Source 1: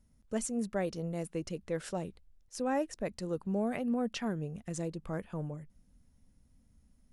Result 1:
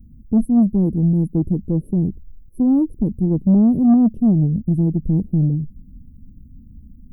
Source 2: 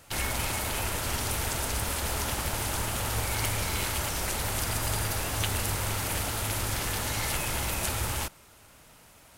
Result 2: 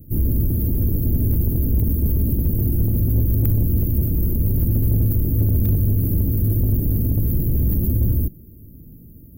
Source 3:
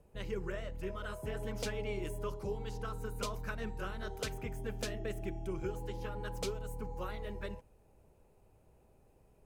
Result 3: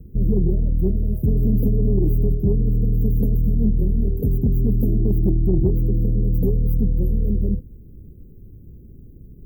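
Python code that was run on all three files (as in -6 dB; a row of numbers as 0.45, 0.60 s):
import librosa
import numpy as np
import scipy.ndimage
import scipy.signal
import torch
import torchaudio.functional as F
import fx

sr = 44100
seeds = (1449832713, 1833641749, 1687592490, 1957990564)

p1 = np.clip(x, -10.0 ** (-23.0 / 20.0), 10.0 ** (-23.0 / 20.0))
p2 = x + (p1 * librosa.db_to_amplitude(-10.5))
p3 = scipy.signal.sosfilt(scipy.signal.cheby2(4, 60, [930.0, 7400.0], 'bandstop', fs=sr, output='sos'), p2)
p4 = 10.0 ** (-28.5 / 20.0) * np.tanh(p3 / 10.0 ** (-28.5 / 20.0))
y = p4 * 10.0 ** (-18 / 20.0) / np.sqrt(np.mean(np.square(p4)))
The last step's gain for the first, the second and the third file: +21.0, +16.5, +22.5 dB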